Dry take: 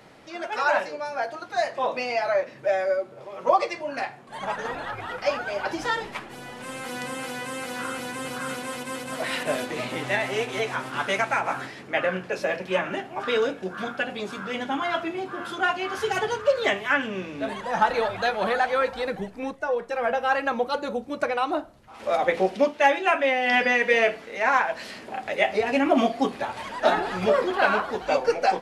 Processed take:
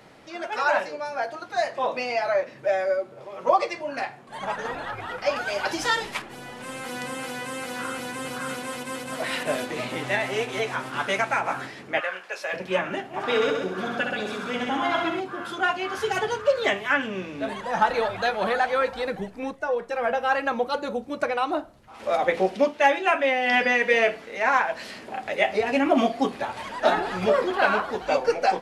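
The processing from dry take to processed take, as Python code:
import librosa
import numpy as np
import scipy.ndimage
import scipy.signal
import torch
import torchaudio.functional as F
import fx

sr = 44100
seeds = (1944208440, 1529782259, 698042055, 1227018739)

y = fx.high_shelf(x, sr, hz=2600.0, db=10.0, at=(5.36, 6.22))
y = fx.highpass(y, sr, hz=830.0, slope=12, at=(11.99, 12.52), fade=0.02)
y = fx.echo_heads(y, sr, ms=65, heads='first and second', feedback_pct=42, wet_db=-6.0, at=(13.13, 15.19), fade=0.02)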